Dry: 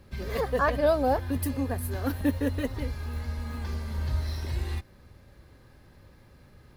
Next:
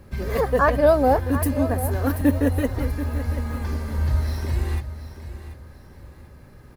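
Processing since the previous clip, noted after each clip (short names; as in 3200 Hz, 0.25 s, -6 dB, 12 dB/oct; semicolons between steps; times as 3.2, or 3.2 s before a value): bell 3700 Hz -7 dB 1.3 oct; feedback echo 0.734 s, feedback 32%, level -12.5 dB; gain +7 dB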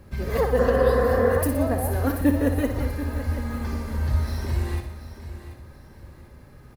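spectral repair 0.62–1.35, 210–2500 Hz before; feedback echo 60 ms, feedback 57%, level -8.5 dB; gain -1.5 dB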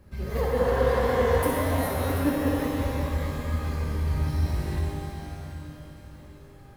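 shimmer reverb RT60 2.6 s, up +12 st, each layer -8 dB, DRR -2 dB; gain -7 dB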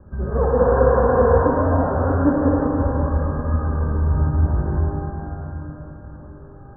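steep low-pass 1600 Hz 96 dB/oct; gain +7.5 dB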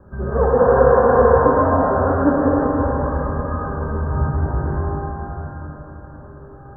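low shelf 260 Hz -7.5 dB; on a send at -8 dB: reverb RT60 2.1 s, pre-delay 4 ms; on the sum: gain +4.5 dB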